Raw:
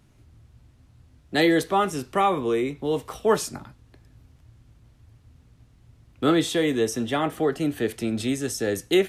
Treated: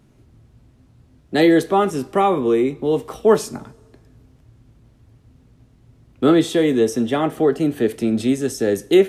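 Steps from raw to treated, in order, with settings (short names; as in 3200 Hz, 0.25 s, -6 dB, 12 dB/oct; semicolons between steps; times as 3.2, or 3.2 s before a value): bell 330 Hz +7.5 dB 2.5 oct; two-slope reverb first 0.26 s, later 1.6 s, from -17 dB, DRR 15 dB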